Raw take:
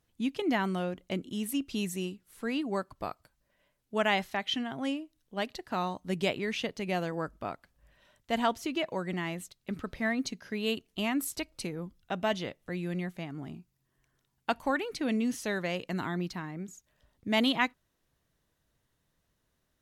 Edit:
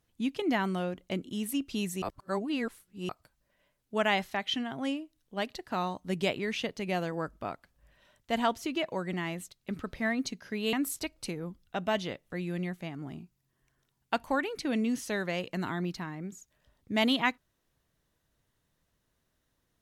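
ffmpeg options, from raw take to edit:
ffmpeg -i in.wav -filter_complex "[0:a]asplit=4[link_01][link_02][link_03][link_04];[link_01]atrim=end=2.022[link_05];[link_02]atrim=start=2.018:end=3.092,asetpts=PTS-STARTPTS,areverse[link_06];[link_03]atrim=start=3.088:end=10.732[link_07];[link_04]atrim=start=11.088[link_08];[link_05][link_06]acrossfade=duration=0.004:curve1=hsin:curve2=hsin[link_09];[link_09][link_07]acrossfade=duration=0.004:curve1=hsin:curve2=hsin[link_10];[link_10][link_08]acrossfade=duration=0.004:curve1=hsin:curve2=hsin" out.wav

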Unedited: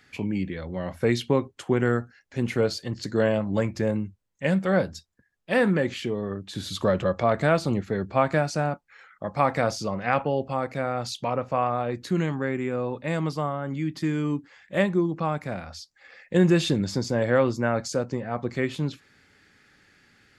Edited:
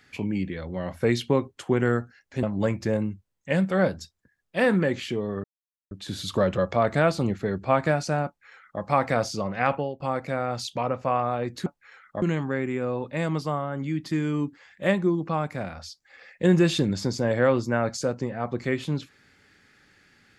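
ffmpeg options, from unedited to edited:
ffmpeg -i in.wav -filter_complex "[0:a]asplit=6[link_01][link_02][link_03][link_04][link_05][link_06];[link_01]atrim=end=2.432[link_07];[link_02]atrim=start=3.368:end=6.38,asetpts=PTS-STARTPTS,afade=type=out:start_time=3.008:duration=0.004:curve=hsin,apad=pad_dur=0.47[link_08];[link_03]atrim=start=6.38:end=10.47,asetpts=PTS-STARTPTS,afade=type=in:duration=0.004:curve=hsin,afade=type=out:start_time=3.84:duration=0.25:silence=0.0891251[link_09];[link_04]atrim=start=10.47:end=12.132,asetpts=PTS-STARTPTS,afade=type=in:duration=0.004:curve=hsin:silence=0.0891251[link_10];[link_05]atrim=start=8.728:end=9.292[link_11];[link_06]atrim=start=12.128[link_12];[link_08][link_09][link_10]concat=n=3:v=0:a=1[link_13];[link_07][link_13]acrossfade=duration=0.004:curve1=hsin:curve2=hsin[link_14];[link_14][link_11]acrossfade=duration=0.004:curve1=hsin:curve2=hsin[link_15];[link_15][link_12]acrossfade=duration=0.004:curve1=hsin:curve2=hsin" out.wav

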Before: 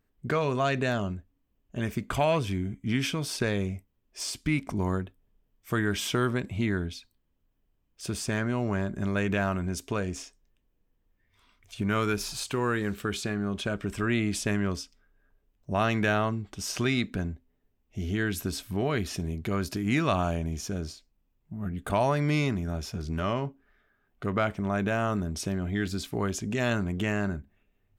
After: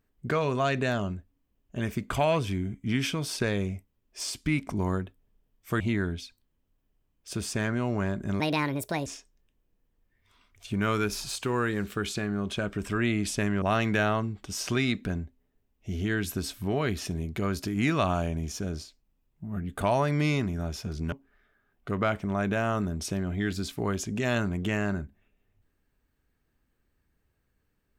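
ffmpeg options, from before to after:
ffmpeg -i in.wav -filter_complex "[0:a]asplit=6[link_01][link_02][link_03][link_04][link_05][link_06];[link_01]atrim=end=5.802[link_07];[link_02]atrim=start=6.528:end=9.134[link_08];[link_03]atrim=start=9.13:end=10.14,asetpts=PTS-STARTPTS,asetrate=67473,aresample=44100[link_09];[link_04]atrim=start=10.136:end=14.702[link_10];[link_05]atrim=start=15.708:end=23.212[link_11];[link_06]atrim=start=23.468[link_12];[link_07][link_08]acrossfade=duration=0.004:curve1=hsin:curve2=hsin[link_13];[link_13][link_09]acrossfade=duration=0.004:curve1=hsin:curve2=hsin[link_14];[link_14][link_10]acrossfade=duration=0.004:curve1=hsin:curve2=hsin[link_15];[link_15][link_11]acrossfade=duration=0.004:curve1=hsin:curve2=hsin[link_16];[link_16][link_12]acrossfade=duration=0.004:curve1=hsin:curve2=hsin" out.wav

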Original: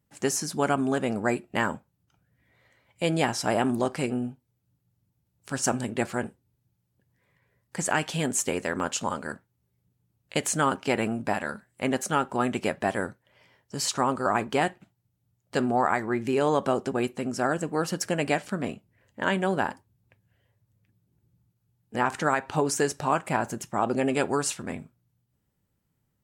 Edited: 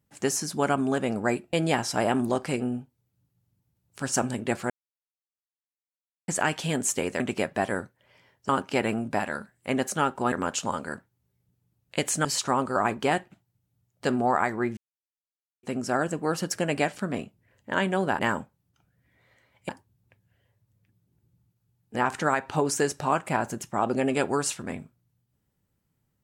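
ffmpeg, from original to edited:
ffmpeg -i in.wav -filter_complex "[0:a]asplit=12[link_01][link_02][link_03][link_04][link_05][link_06][link_07][link_08][link_09][link_10][link_11][link_12];[link_01]atrim=end=1.532[link_13];[link_02]atrim=start=3.028:end=6.2,asetpts=PTS-STARTPTS,afade=type=out:start_time=3.168:duration=0.004:curve=hsin[link_14];[link_03]atrim=start=6.2:end=7.78,asetpts=PTS-STARTPTS,volume=0[link_15];[link_04]atrim=start=7.78:end=8.702,asetpts=PTS-STARTPTS,afade=type=in:duration=0.004:curve=hsin[link_16];[link_05]atrim=start=12.458:end=13.752[link_17];[link_06]atrim=start=10.628:end=12.462[link_18];[link_07]atrim=start=8.698:end=10.632[link_19];[link_08]atrim=start=13.748:end=16.27,asetpts=PTS-STARTPTS,afade=type=out:start_time=2.518:duration=0.004:curve=hsin[link_20];[link_09]atrim=start=16.27:end=17.13,asetpts=PTS-STARTPTS,volume=0[link_21];[link_10]atrim=start=17.13:end=19.692,asetpts=PTS-STARTPTS,afade=type=in:duration=0.004:curve=hsin[link_22];[link_11]atrim=start=1.528:end=3.032[link_23];[link_12]atrim=start=19.688[link_24];[link_14][link_15][link_16]concat=n=3:v=0:a=1[link_25];[link_13][link_25]acrossfade=duration=0.004:curve1=hsin:curve2=hsin[link_26];[link_26][link_17]acrossfade=duration=0.004:curve1=hsin:curve2=hsin[link_27];[link_27][link_18]acrossfade=duration=0.004:curve1=hsin:curve2=hsin[link_28];[link_28][link_19]acrossfade=duration=0.004:curve1=hsin:curve2=hsin[link_29];[link_20][link_21][link_22]concat=n=3:v=0:a=1[link_30];[link_29][link_30]acrossfade=duration=0.004:curve1=hsin:curve2=hsin[link_31];[link_31][link_23]acrossfade=duration=0.004:curve1=hsin:curve2=hsin[link_32];[link_32][link_24]acrossfade=duration=0.004:curve1=hsin:curve2=hsin" out.wav

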